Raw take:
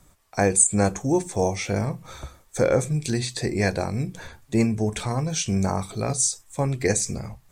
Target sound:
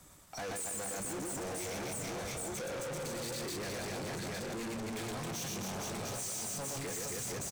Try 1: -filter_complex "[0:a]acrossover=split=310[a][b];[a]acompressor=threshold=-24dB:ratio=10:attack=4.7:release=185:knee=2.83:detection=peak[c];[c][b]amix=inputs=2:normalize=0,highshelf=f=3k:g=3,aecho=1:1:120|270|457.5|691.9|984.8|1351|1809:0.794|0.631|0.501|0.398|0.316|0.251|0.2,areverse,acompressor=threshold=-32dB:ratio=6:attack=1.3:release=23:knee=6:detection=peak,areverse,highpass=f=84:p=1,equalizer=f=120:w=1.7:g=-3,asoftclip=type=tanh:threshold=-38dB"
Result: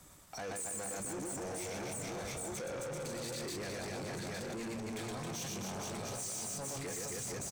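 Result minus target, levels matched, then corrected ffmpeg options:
compressor: peak gain reduction +8.5 dB
-filter_complex "[0:a]acrossover=split=310[a][b];[a]acompressor=threshold=-24dB:ratio=10:attack=4.7:release=185:knee=2.83:detection=peak[c];[c][b]amix=inputs=2:normalize=0,highshelf=f=3k:g=3,aecho=1:1:120|270|457.5|691.9|984.8|1351|1809:0.794|0.631|0.501|0.398|0.316|0.251|0.2,areverse,acompressor=threshold=-22dB:ratio=6:attack=1.3:release=23:knee=6:detection=peak,areverse,highpass=f=84:p=1,equalizer=f=120:w=1.7:g=-3,asoftclip=type=tanh:threshold=-38dB"

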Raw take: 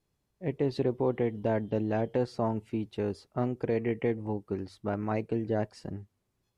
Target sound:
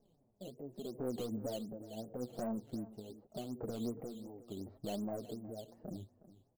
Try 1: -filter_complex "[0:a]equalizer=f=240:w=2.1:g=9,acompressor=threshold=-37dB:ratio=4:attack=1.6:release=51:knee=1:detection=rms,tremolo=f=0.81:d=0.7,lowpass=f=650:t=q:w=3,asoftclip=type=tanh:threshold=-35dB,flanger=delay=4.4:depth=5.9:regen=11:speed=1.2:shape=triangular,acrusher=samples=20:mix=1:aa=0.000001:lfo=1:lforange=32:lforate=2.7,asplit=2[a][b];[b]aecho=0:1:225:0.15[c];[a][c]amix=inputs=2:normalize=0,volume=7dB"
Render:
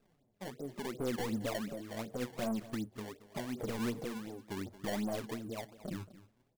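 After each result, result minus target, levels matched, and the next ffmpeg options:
echo 0.139 s early; decimation with a swept rate: distortion +10 dB; compressor: peak gain reduction -5 dB
-filter_complex "[0:a]equalizer=f=240:w=2.1:g=9,acompressor=threshold=-37dB:ratio=4:attack=1.6:release=51:knee=1:detection=rms,tremolo=f=0.81:d=0.7,lowpass=f=650:t=q:w=3,asoftclip=type=tanh:threshold=-35dB,flanger=delay=4.4:depth=5.9:regen=11:speed=1.2:shape=triangular,acrusher=samples=20:mix=1:aa=0.000001:lfo=1:lforange=32:lforate=2.7,asplit=2[a][b];[b]aecho=0:1:364:0.15[c];[a][c]amix=inputs=2:normalize=0,volume=7dB"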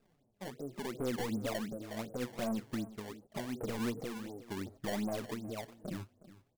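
decimation with a swept rate: distortion +10 dB; compressor: peak gain reduction -5 dB
-filter_complex "[0:a]equalizer=f=240:w=2.1:g=9,acompressor=threshold=-37dB:ratio=4:attack=1.6:release=51:knee=1:detection=rms,tremolo=f=0.81:d=0.7,lowpass=f=650:t=q:w=3,asoftclip=type=tanh:threshold=-35dB,flanger=delay=4.4:depth=5.9:regen=11:speed=1.2:shape=triangular,acrusher=samples=7:mix=1:aa=0.000001:lfo=1:lforange=11.2:lforate=2.7,asplit=2[a][b];[b]aecho=0:1:364:0.15[c];[a][c]amix=inputs=2:normalize=0,volume=7dB"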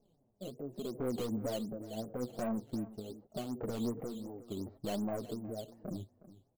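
compressor: peak gain reduction -5 dB
-filter_complex "[0:a]equalizer=f=240:w=2.1:g=9,acompressor=threshold=-44dB:ratio=4:attack=1.6:release=51:knee=1:detection=rms,tremolo=f=0.81:d=0.7,lowpass=f=650:t=q:w=3,asoftclip=type=tanh:threshold=-35dB,flanger=delay=4.4:depth=5.9:regen=11:speed=1.2:shape=triangular,acrusher=samples=7:mix=1:aa=0.000001:lfo=1:lforange=11.2:lforate=2.7,asplit=2[a][b];[b]aecho=0:1:364:0.15[c];[a][c]amix=inputs=2:normalize=0,volume=7dB"

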